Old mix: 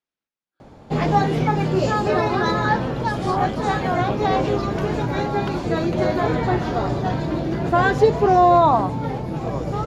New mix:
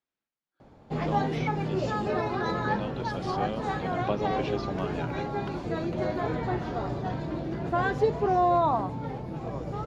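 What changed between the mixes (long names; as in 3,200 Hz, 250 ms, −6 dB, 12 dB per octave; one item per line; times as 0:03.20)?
background −9.0 dB
master: add high-shelf EQ 5,400 Hz −6.5 dB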